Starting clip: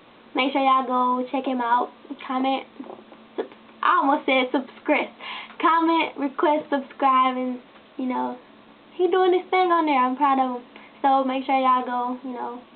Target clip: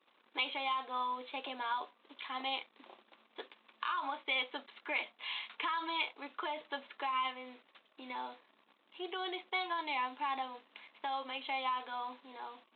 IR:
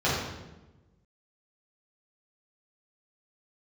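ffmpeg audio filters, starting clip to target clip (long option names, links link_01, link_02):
-af "alimiter=limit=-13dB:level=0:latency=1:release=335,anlmdn=0.0158,aderivative,volume=3.5dB"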